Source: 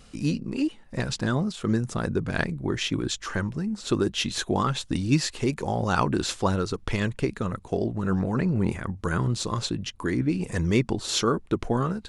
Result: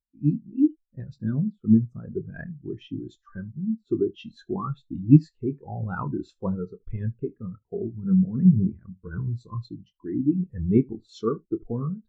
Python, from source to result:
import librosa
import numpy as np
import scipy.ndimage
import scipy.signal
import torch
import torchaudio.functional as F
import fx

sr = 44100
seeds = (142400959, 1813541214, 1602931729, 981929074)

p1 = x + fx.room_early_taps(x, sr, ms=(27, 76), db=(-9.5, -13.5), dry=0)
p2 = fx.spectral_expand(p1, sr, expansion=2.5)
y = p2 * librosa.db_to_amplitude(7.0)